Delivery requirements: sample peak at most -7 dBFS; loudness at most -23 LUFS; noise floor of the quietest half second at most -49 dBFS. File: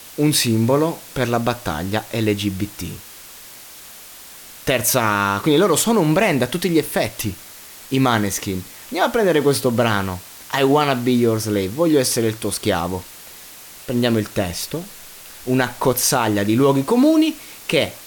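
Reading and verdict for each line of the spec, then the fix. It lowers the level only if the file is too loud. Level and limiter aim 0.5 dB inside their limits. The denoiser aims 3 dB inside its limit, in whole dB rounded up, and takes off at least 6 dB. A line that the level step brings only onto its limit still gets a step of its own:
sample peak -5.5 dBFS: fail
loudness -19.0 LUFS: fail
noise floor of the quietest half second -40 dBFS: fail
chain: noise reduction 8 dB, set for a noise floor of -40 dBFS; trim -4.5 dB

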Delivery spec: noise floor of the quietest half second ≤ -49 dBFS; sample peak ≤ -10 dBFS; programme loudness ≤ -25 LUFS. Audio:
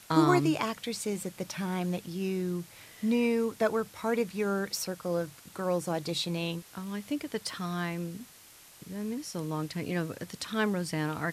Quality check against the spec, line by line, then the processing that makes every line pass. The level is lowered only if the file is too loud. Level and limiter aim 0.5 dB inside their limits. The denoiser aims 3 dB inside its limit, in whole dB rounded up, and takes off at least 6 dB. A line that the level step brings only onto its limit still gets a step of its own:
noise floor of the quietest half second -54 dBFS: pass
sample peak -11.5 dBFS: pass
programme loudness -32.0 LUFS: pass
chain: none needed

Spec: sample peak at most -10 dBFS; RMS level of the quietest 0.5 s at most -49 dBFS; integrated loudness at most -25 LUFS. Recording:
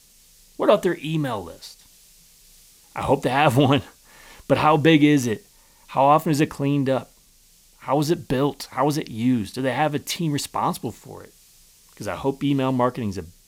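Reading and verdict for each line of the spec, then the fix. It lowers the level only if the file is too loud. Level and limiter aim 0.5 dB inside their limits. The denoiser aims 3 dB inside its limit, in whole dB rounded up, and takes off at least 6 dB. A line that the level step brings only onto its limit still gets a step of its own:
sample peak -4.5 dBFS: fail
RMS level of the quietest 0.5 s -55 dBFS: pass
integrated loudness -21.5 LUFS: fail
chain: trim -4 dB; peak limiter -10.5 dBFS

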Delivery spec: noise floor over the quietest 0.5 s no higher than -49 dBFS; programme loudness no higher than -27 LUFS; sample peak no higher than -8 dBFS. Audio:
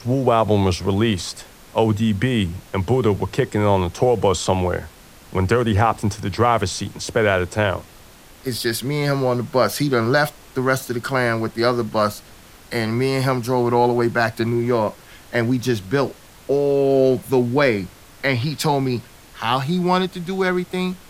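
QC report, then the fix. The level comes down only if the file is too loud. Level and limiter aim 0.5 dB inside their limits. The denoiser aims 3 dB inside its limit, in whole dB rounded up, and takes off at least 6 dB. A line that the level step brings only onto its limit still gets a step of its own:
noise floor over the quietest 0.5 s -45 dBFS: fail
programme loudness -20.5 LUFS: fail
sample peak -3.5 dBFS: fail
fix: trim -7 dB

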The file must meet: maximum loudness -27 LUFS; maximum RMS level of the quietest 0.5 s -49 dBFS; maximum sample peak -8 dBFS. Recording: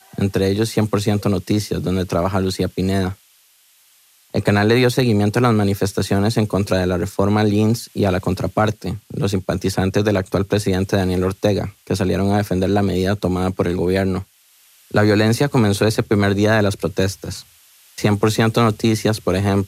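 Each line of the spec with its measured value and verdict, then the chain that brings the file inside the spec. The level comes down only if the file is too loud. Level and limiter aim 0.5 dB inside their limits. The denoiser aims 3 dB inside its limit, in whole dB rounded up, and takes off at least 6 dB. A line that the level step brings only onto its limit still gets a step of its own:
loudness -18.5 LUFS: fail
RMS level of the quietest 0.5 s -55 dBFS: pass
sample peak -4.5 dBFS: fail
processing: trim -9 dB

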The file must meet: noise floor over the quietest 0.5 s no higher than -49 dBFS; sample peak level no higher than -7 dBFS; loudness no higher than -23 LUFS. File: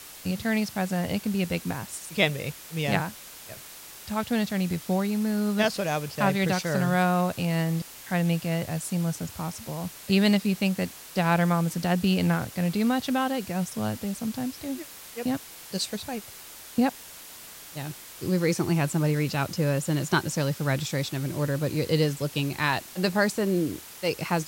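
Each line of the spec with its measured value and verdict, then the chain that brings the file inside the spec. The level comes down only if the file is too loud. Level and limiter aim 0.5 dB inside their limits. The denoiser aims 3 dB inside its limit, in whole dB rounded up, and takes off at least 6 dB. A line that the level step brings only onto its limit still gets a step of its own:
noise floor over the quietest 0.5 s -45 dBFS: fail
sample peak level -9.0 dBFS: pass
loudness -27.0 LUFS: pass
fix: noise reduction 7 dB, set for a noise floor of -45 dBFS

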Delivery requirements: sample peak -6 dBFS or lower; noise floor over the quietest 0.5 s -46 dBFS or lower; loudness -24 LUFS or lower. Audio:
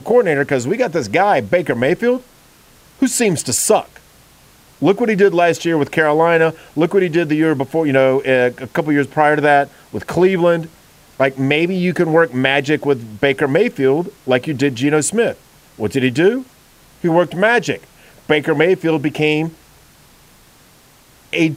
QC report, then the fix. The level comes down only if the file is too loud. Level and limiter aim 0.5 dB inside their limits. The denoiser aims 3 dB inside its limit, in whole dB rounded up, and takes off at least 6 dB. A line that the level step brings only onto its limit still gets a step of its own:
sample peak -1.5 dBFS: fail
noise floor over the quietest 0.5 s -48 dBFS: pass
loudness -16.0 LUFS: fail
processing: trim -8.5 dB

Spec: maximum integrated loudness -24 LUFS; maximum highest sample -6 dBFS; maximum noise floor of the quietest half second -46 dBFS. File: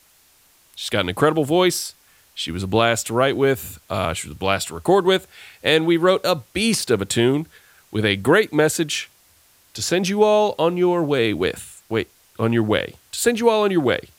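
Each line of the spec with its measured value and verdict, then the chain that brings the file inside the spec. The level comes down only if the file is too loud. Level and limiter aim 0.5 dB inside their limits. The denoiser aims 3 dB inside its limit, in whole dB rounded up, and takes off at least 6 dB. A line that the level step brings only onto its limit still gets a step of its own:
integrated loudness -20.0 LUFS: fail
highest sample -2.0 dBFS: fail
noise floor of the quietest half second -56 dBFS: pass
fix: trim -4.5 dB

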